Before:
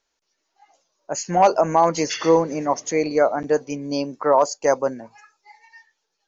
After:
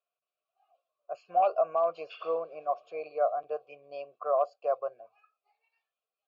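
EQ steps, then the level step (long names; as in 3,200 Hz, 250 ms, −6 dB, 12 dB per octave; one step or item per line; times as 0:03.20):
formant filter a
phaser with its sweep stopped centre 1,300 Hz, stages 8
0.0 dB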